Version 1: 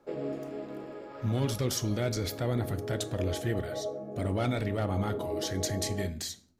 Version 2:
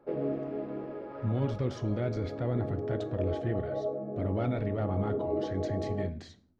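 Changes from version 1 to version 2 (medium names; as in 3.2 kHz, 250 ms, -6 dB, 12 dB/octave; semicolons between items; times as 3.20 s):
background +4.5 dB; master: add tape spacing loss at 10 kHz 35 dB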